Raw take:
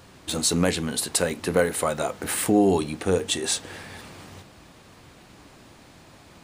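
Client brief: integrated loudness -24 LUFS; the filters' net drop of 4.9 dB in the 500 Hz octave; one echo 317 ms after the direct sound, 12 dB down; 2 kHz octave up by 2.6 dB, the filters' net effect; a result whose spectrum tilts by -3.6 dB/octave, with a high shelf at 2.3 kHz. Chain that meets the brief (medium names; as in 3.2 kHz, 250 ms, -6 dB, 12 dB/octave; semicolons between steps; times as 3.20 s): peaking EQ 500 Hz -6 dB; peaking EQ 2 kHz +5.5 dB; treble shelf 2.3 kHz -3 dB; delay 317 ms -12 dB; trim +2 dB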